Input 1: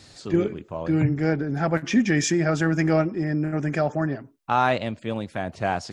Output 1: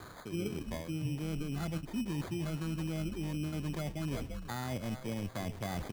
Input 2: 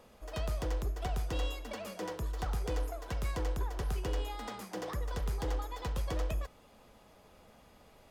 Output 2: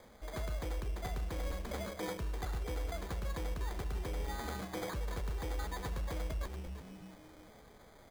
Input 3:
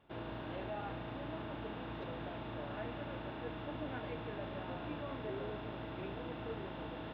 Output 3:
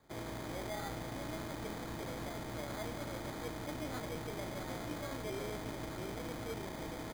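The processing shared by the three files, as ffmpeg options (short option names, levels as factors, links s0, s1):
-filter_complex "[0:a]acrossover=split=270[s0][s1];[s1]acompressor=threshold=0.0224:ratio=6[s2];[s0][s2]amix=inputs=2:normalize=0,asplit=5[s3][s4][s5][s6][s7];[s4]adelay=341,afreqshift=-120,volume=0.251[s8];[s5]adelay=682,afreqshift=-240,volume=0.0955[s9];[s6]adelay=1023,afreqshift=-360,volume=0.0363[s10];[s7]adelay=1364,afreqshift=-480,volume=0.0138[s11];[s3][s8][s9][s10][s11]amix=inputs=5:normalize=0,acrusher=samples=16:mix=1:aa=0.000001,areverse,acompressor=threshold=0.0178:ratio=6,areverse,volume=1.12"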